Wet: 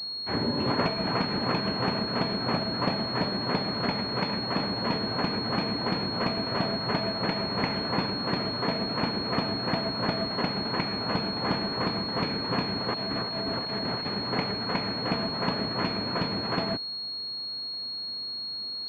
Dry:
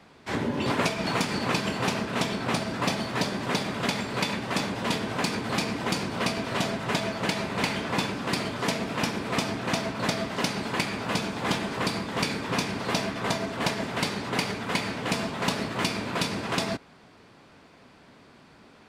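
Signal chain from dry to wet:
0:12.94–0:14.06: compressor whose output falls as the input rises −33 dBFS, ratio −1
switching amplifier with a slow clock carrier 4,300 Hz

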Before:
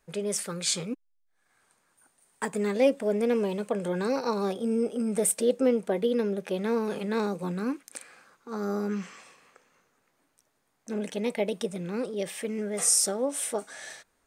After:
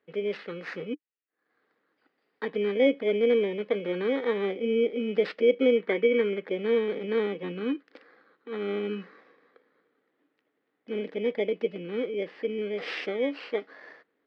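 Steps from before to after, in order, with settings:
samples in bit-reversed order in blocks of 16 samples
loudspeaker in its box 230–2,900 Hz, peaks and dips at 300 Hz +8 dB, 460 Hz +7 dB, 650 Hz −4 dB, 930 Hz −6 dB, 1,900 Hz +7 dB, 2,800 Hz +5 dB
gain on a spectral selection 0:05.77–0:06.47, 900–2,300 Hz +7 dB
level −1.5 dB

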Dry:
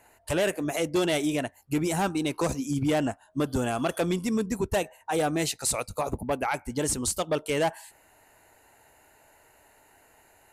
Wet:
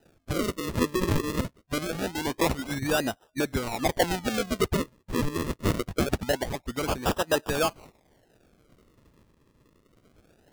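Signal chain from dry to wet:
rotating-speaker cabinet horn 0.65 Hz
sample-and-hold swept by an LFO 40×, swing 100% 0.24 Hz
harmonic and percussive parts rebalanced harmonic −11 dB
level +5.5 dB

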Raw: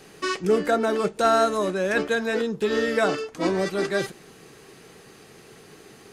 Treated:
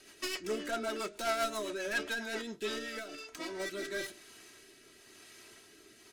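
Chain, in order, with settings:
stylus tracing distortion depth 0.092 ms
tilt shelving filter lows −6 dB, about 1,200 Hz
comb filter 3.1 ms, depth 68%
0:02.78–0:03.60: downward compressor 6 to 1, threshold −28 dBFS, peak gain reduction 12 dB
flanger 0.61 Hz, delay 7.8 ms, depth 1.6 ms, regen −83%
soft clipping −22.5 dBFS, distortion −10 dB
rotating-speaker cabinet horn 7.5 Hz, later 1 Hz, at 0:02.33
level −3 dB

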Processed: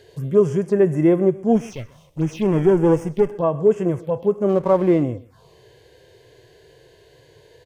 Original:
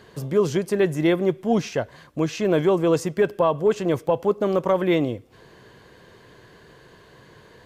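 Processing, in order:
0:01.55–0:03.32: lower of the sound and its delayed copy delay 0.33 ms
harmonic and percussive parts rebalanced percussive −14 dB
phaser swept by the level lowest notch 180 Hz, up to 4,000 Hz, full sweep at −22.5 dBFS
0:04.49–0:05.03: slack as between gear wheels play −39 dBFS
on a send: single-tap delay 130 ms −21.5 dB
on the sum: level +5 dB

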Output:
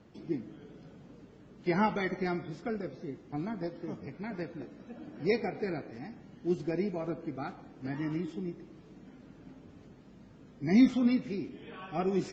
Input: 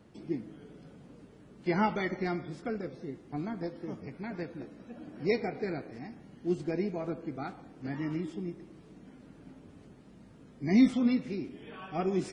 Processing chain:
AAC 64 kbit/s 16,000 Hz

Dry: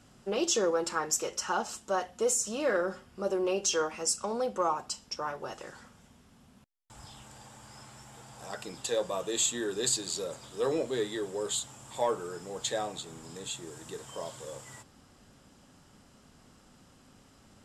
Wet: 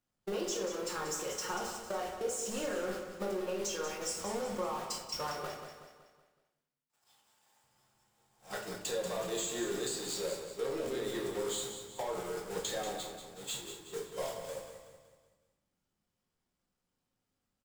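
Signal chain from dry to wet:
converter with a step at zero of −29.5 dBFS
0:05.45–0:07.64: high-pass filter 660 Hz 6 dB per octave
noise gate −31 dBFS, range −54 dB
downward compressor 10 to 1, threshold −38 dBFS, peak gain reduction 16 dB
repeating echo 187 ms, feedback 46%, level −9 dB
rectangular room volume 160 cubic metres, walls mixed, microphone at 0.91 metres

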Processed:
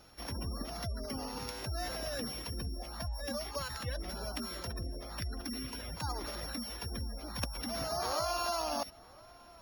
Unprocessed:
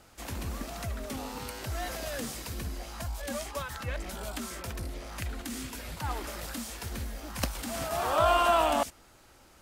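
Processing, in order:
samples sorted by size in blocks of 8 samples
parametric band 5,400 Hz +2 dB 2.7 octaves
downward compressor 6 to 1, threshold −29 dBFS, peak gain reduction 9.5 dB
gate on every frequency bin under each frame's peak −25 dB strong
feedback echo with a low-pass in the loop 1,002 ms, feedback 25%, low-pass 1,500 Hz, level −21.5 dB
level −2 dB

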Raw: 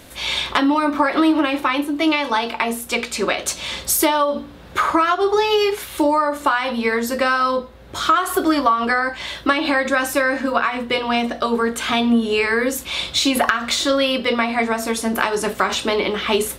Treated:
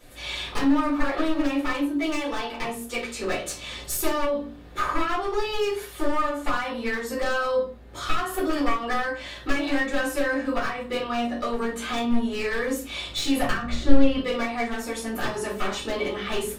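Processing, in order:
wavefolder on the positive side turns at −13 dBFS
0:13.61–0:14.17: RIAA equalisation playback
rectangular room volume 140 cubic metres, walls furnished, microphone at 4.2 metres
level −17 dB

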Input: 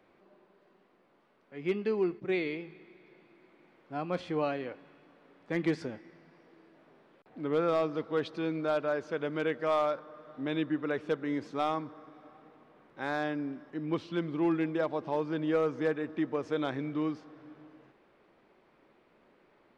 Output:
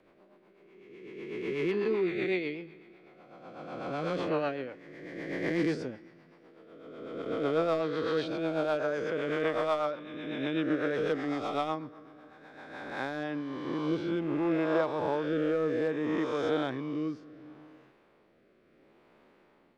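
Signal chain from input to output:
peak hold with a rise ahead of every peak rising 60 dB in 1.92 s
rotating-speaker cabinet horn 8 Hz, later 0.7 Hz, at 0:12.42

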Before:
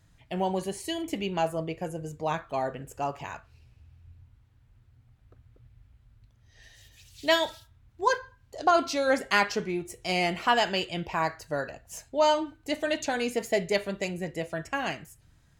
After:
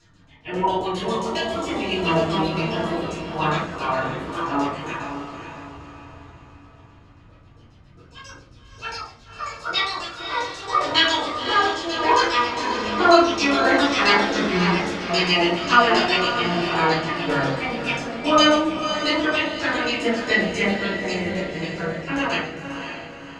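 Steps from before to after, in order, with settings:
ceiling on every frequency bin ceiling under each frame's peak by 12 dB
time stretch by phase vocoder 1.5×
delay with pitch and tempo change per echo 554 ms, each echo +3 semitones, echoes 3, each echo −6 dB
auto-filter low-pass saw down 7.4 Hz 510–6,800 Hz
feedback delay with all-pass diffusion 556 ms, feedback 44%, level −8 dB
convolution reverb RT60 0.50 s, pre-delay 3 ms, DRR −8.5 dB
level −4.5 dB

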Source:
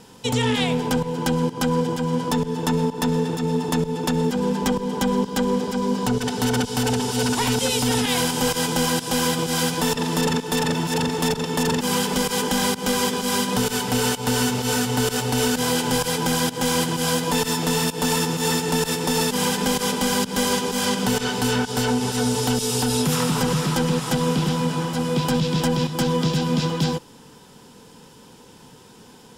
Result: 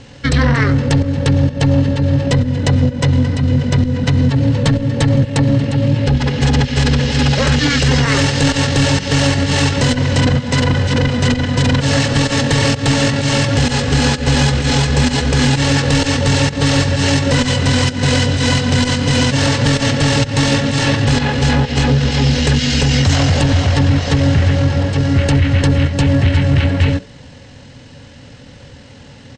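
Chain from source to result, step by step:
low-shelf EQ 380 Hz +3 dB
hum removal 111.7 Hz, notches 10
pitch shifter −10 semitones
in parallel at −5 dB: sine wavefolder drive 5 dB, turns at −6 dBFS

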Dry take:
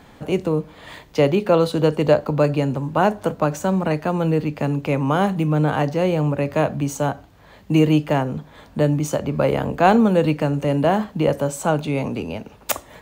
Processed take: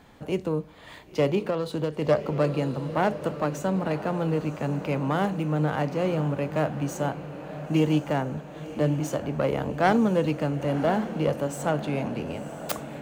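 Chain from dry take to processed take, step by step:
phase distortion by the signal itself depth 0.12 ms
feedback delay with all-pass diffusion 1,017 ms, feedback 57%, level −12 dB
0:01.41–0:02.02: downward compressor, threshold −17 dBFS, peak gain reduction 7 dB
level −6.5 dB

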